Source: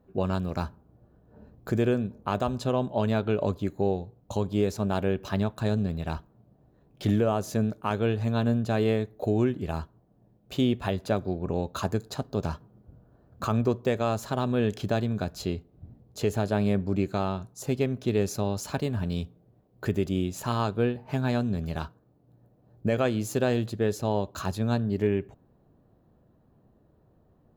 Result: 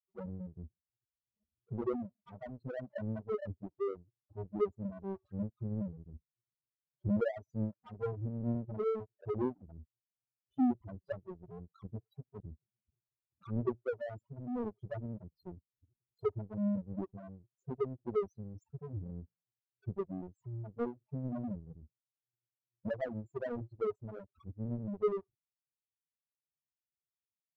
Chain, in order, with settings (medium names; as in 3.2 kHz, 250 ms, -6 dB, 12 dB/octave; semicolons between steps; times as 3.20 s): loudest bins only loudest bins 2; power-law waveshaper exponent 2